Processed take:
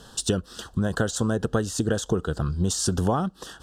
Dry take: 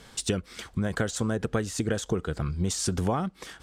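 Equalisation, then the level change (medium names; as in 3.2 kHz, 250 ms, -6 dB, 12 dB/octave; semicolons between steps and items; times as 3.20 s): Butterworth band-stop 2.2 kHz, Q 2; +3.5 dB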